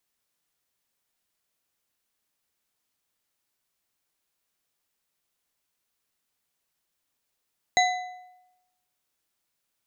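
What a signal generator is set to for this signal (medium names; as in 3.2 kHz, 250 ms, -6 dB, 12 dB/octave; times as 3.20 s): metal hit bar, lowest mode 731 Hz, modes 4, decay 0.95 s, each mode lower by 3 dB, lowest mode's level -17.5 dB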